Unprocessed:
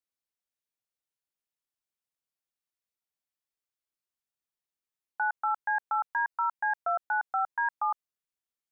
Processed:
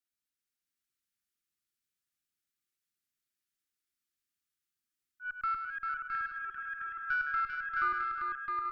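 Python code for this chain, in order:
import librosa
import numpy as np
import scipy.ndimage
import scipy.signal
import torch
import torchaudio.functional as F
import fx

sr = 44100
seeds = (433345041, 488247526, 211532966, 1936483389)

p1 = fx.reverse_delay(x, sr, ms=350, wet_db=-11.0)
p2 = fx.auto_swell(p1, sr, attack_ms=213.0)
p3 = fx.cheby_harmonics(p2, sr, harmonics=(4,), levels_db=(-26,), full_scale_db=-18.0)
p4 = scipy.signal.sosfilt(scipy.signal.cheby1(5, 1.0, [380.0, 1200.0], 'bandstop', fs=sr, output='sos'), p3)
y = p4 + fx.echo_multitap(p4, sr, ms=(103, 213, 395, 664, 769, 836), db=(-7.5, -14.0, -4.5, -3.5, -9.0, -14.0), dry=0)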